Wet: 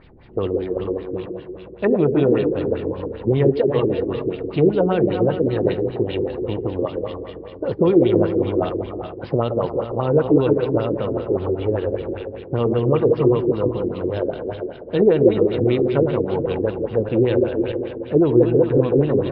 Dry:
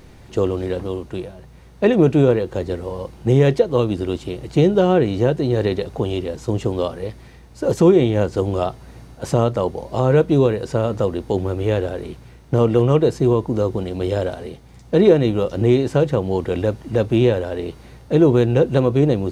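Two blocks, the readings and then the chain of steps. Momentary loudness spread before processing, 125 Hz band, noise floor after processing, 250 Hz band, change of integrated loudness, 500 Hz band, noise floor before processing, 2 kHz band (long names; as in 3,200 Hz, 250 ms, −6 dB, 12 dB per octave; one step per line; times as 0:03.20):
13 LU, −4.0 dB, −37 dBFS, −0.5 dB, −1.0 dB, 0.0 dB, −44 dBFS, −3.5 dB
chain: feedback delay that plays each chunk backwards 211 ms, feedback 58%, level −6.5 dB
on a send: echo through a band-pass that steps 163 ms, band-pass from 380 Hz, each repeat 1.4 octaves, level −4 dB
on the sum: downsampling to 11,025 Hz
auto-filter low-pass sine 5.1 Hz 340–3,600 Hz
level −5.5 dB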